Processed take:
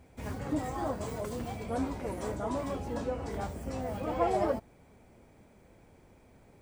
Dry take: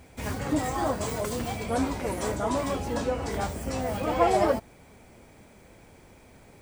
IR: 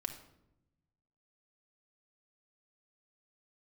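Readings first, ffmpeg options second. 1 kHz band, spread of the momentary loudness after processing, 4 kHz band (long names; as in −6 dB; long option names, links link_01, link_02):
−7.0 dB, 8 LU, −11.0 dB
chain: -af "tiltshelf=frequency=1400:gain=3.5,volume=-8.5dB"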